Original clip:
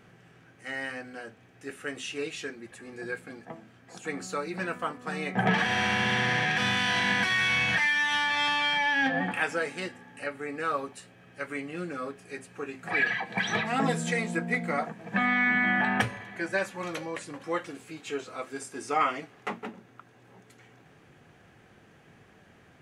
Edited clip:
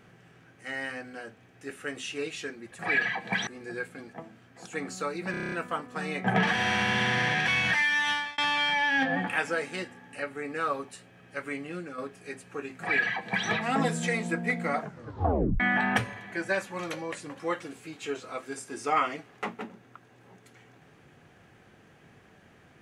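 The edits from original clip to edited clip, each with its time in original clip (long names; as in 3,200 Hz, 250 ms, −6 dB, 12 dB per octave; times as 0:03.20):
0:04.63: stutter 0.03 s, 8 plays
0:06.59–0:07.52: remove
0:08.13–0:08.42: fade out
0:11.67–0:12.02: fade out, to −6.5 dB
0:12.84–0:13.52: duplicate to 0:02.79
0:14.84: tape stop 0.80 s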